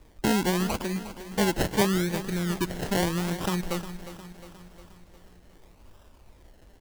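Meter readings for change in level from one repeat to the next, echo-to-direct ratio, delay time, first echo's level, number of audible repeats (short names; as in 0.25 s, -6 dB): -5.0 dB, -11.5 dB, 0.357 s, -13.0 dB, 5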